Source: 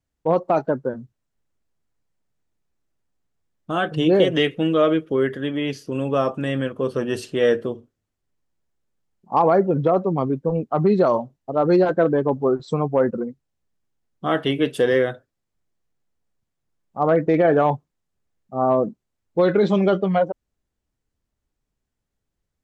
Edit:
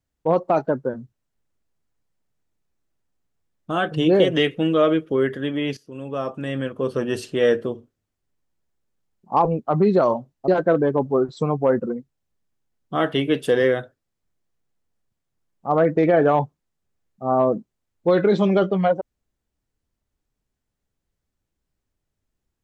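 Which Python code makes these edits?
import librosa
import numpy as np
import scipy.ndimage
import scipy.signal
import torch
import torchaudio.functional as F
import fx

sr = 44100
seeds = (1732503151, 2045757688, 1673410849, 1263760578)

y = fx.edit(x, sr, fx.fade_in_from(start_s=5.77, length_s=1.16, floor_db=-15.0),
    fx.cut(start_s=9.45, length_s=1.04),
    fx.cut(start_s=11.52, length_s=0.27), tone=tone)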